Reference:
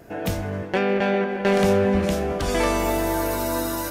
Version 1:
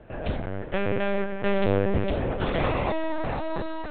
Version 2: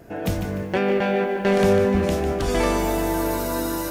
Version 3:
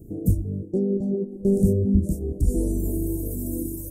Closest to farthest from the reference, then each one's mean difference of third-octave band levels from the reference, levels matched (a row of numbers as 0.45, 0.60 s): 2, 1, 3; 2.0, 9.5, 15.5 dB